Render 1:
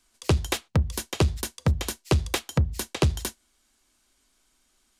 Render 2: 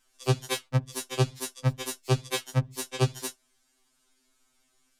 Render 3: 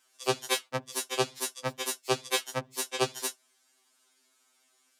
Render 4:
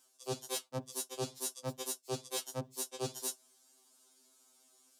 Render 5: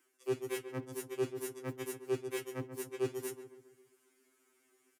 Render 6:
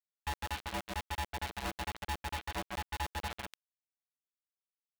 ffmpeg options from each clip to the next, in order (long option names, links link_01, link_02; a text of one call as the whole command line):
ffmpeg -i in.wav -af "afftfilt=real='re*2.45*eq(mod(b,6),0)':imag='im*2.45*eq(mod(b,6),0)':win_size=2048:overlap=0.75" out.wav
ffmpeg -i in.wav -af "highpass=390,volume=2.5dB" out.wav
ffmpeg -i in.wav -af "equalizer=frequency=2000:width=0.84:gain=-14,areverse,acompressor=threshold=-40dB:ratio=10,areverse,volume=5dB" out.wav
ffmpeg -i in.wav -filter_complex "[0:a]firequalizer=gain_entry='entry(120,0);entry(170,-20);entry(320,11);entry(570,-12);entry(2000,7);entry(3800,-16);entry(15000,-6)':delay=0.05:min_phase=1,acrossover=split=160|2200[link_01][link_02][link_03];[link_01]acrusher=bits=5:mode=log:mix=0:aa=0.000001[link_04];[link_04][link_02][link_03]amix=inputs=3:normalize=0,asplit=2[link_05][link_06];[link_06]adelay=136,lowpass=frequency=1500:poles=1,volume=-8.5dB,asplit=2[link_07][link_08];[link_08]adelay=136,lowpass=frequency=1500:poles=1,volume=0.52,asplit=2[link_09][link_10];[link_10]adelay=136,lowpass=frequency=1500:poles=1,volume=0.52,asplit=2[link_11][link_12];[link_12]adelay=136,lowpass=frequency=1500:poles=1,volume=0.52,asplit=2[link_13][link_14];[link_14]adelay=136,lowpass=frequency=1500:poles=1,volume=0.52,asplit=2[link_15][link_16];[link_16]adelay=136,lowpass=frequency=1500:poles=1,volume=0.52[link_17];[link_05][link_07][link_09][link_11][link_13][link_15][link_17]amix=inputs=7:normalize=0,volume=2.5dB" out.wav
ffmpeg -i in.wav -af "acompressor=threshold=-46dB:ratio=5,aresample=8000,acrusher=bits=7:mix=0:aa=0.000001,aresample=44100,aeval=exprs='val(0)*sgn(sin(2*PI*460*n/s))':channel_layout=same,volume=9dB" out.wav